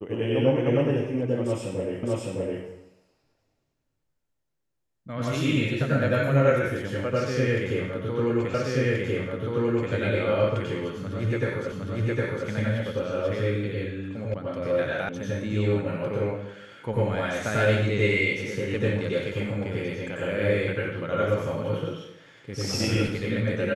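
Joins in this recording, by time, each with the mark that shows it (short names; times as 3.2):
2.03 repeat of the last 0.61 s
8.54 repeat of the last 1.38 s
11.72 repeat of the last 0.76 s
14.34 sound cut off
15.09 sound cut off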